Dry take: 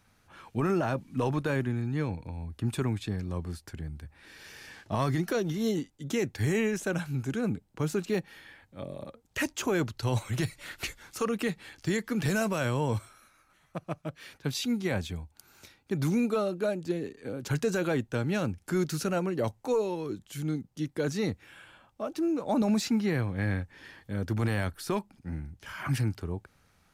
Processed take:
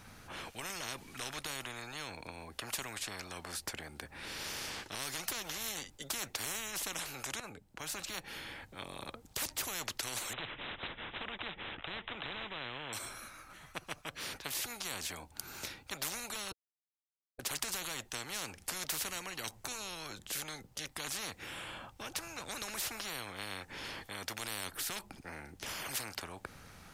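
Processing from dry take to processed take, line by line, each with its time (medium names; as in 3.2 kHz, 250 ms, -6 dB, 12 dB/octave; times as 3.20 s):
7.40–9.00 s: fade in, from -12.5 dB
10.33–12.93 s: careless resampling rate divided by 6×, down none, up filtered
16.52–17.39 s: mute
whole clip: spectrum-flattening compressor 10:1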